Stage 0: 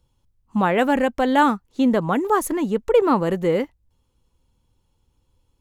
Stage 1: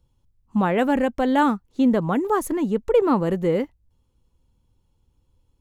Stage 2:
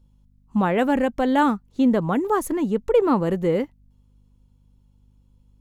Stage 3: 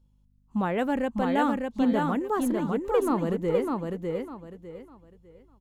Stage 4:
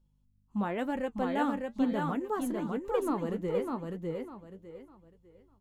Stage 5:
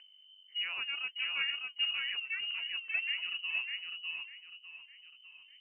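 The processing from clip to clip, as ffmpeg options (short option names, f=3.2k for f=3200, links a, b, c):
-af "lowshelf=f=460:g=6,volume=-4.5dB"
-af "aeval=exprs='val(0)+0.00158*(sin(2*PI*50*n/s)+sin(2*PI*2*50*n/s)/2+sin(2*PI*3*50*n/s)/3+sin(2*PI*4*50*n/s)/4+sin(2*PI*5*50*n/s)/5)':c=same"
-af "aecho=1:1:602|1204|1806|2408:0.668|0.18|0.0487|0.0132,volume=-6.5dB"
-af "flanger=delay=5.2:depth=6:regen=58:speed=1:shape=triangular,volume=-1.5dB"
-af "lowpass=f=2.6k:t=q:w=0.5098,lowpass=f=2.6k:t=q:w=0.6013,lowpass=f=2.6k:t=q:w=0.9,lowpass=f=2.6k:t=q:w=2.563,afreqshift=-3100,acompressor=mode=upward:threshold=-41dB:ratio=2.5,volume=-5dB"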